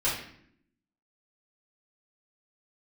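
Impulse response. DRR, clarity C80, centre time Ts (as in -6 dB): -10.0 dB, 7.5 dB, 43 ms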